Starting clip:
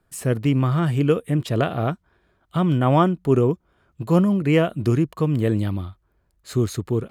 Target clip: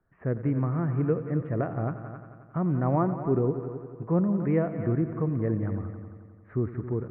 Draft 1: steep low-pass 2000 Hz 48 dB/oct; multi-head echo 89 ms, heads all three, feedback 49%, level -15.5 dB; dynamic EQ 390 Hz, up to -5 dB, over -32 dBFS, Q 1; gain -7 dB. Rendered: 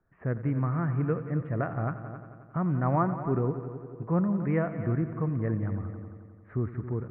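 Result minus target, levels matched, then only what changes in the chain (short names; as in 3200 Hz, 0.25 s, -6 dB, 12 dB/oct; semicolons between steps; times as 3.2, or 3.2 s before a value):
2000 Hz band +5.0 dB
change: dynamic EQ 1500 Hz, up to -5 dB, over -32 dBFS, Q 1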